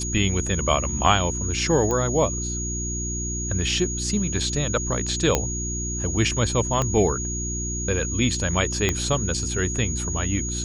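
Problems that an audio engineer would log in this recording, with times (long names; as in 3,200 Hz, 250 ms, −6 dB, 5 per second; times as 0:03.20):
mains hum 60 Hz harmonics 6 −30 dBFS
whistle 6,700 Hz −29 dBFS
0:01.91: click −13 dBFS
0:05.35: click −5 dBFS
0:06.82: click −11 dBFS
0:08.89: click −7 dBFS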